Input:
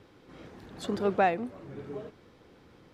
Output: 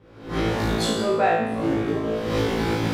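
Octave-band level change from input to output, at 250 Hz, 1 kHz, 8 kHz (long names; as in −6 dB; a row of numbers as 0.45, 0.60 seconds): +13.0 dB, +7.0 dB, can't be measured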